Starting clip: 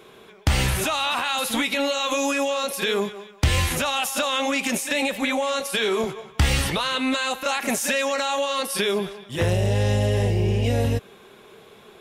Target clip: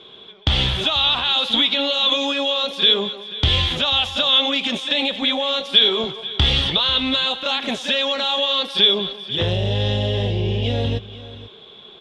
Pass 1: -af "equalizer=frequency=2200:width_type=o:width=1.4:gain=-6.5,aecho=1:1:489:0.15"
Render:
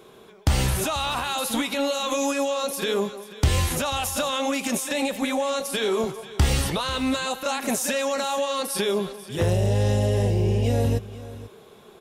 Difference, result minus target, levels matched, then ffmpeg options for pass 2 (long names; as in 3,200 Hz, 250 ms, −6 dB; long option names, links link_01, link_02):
4,000 Hz band −8.5 dB
-af "lowpass=frequency=3400:width_type=q:width=11,equalizer=frequency=2200:width_type=o:width=1.4:gain=-6.5,aecho=1:1:489:0.15"